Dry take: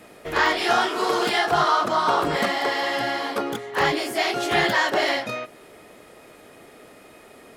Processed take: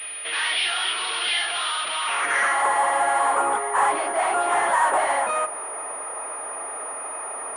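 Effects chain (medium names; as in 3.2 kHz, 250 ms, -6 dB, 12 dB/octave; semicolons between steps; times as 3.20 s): overdrive pedal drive 30 dB, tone 2.6 kHz, clips at -7 dBFS; band-pass sweep 3.2 kHz -> 970 Hz, 1.94–2.72 s; class-D stage that switches slowly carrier 9.6 kHz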